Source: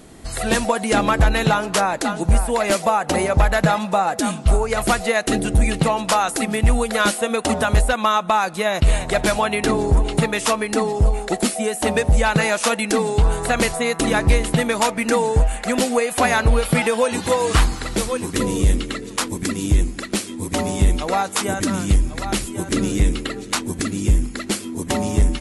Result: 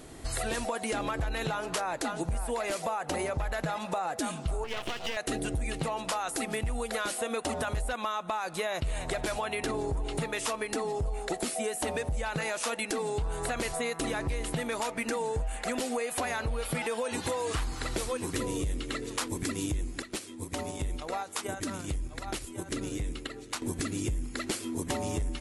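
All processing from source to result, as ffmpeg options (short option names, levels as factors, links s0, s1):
-filter_complex "[0:a]asettb=1/sr,asplit=3[s0][s1][s2];[s0]atrim=end=4.644[s3];[s1]atrim=start=4.64:end=5.17,asetpts=PTS-STARTPTS,afade=t=in:d=0.004:c=qsin,afade=t=out:st=0.526:d=0.004:c=qsin,highpass=120,lowpass=4400,equalizer=f=3000:t=o:w=0.45:g=15,aeval=exprs='max(val(0),0)':c=same[s4];[s2]atrim=start=5.166[s5];[s3][s4]acrossfade=d=0.004:c1=hsin:c2=qsin[s6];[s6][s5]acrossfade=d=0.004:c1=qsin:c2=hsin,asettb=1/sr,asplit=3[s7][s8][s9];[s7]atrim=end=20.024[s10];[s8]atrim=start=20.02:end=23.62,asetpts=PTS-STARTPTS,afade=t=in:d=0.004:c=qsin,afade=t=out:st=3.596:d=0.004:c=qsin,acompressor=threshold=0.0562:ratio=4:attack=3.2:release=140:knee=1:detection=peak,agate=range=0.355:threshold=0.0355:ratio=16:release=100:detection=peak[s11];[s9]atrim=start=23.616[s12];[s10][s11]acrossfade=d=0.004:c1=hsin:c2=qsin[s13];[s13][s12]acrossfade=d=0.004:c1=qsin:c2=hsin,equalizer=f=200:w=6.1:g=-12,alimiter=limit=0.237:level=0:latency=1:release=14,acompressor=threshold=0.0501:ratio=6,volume=0.708"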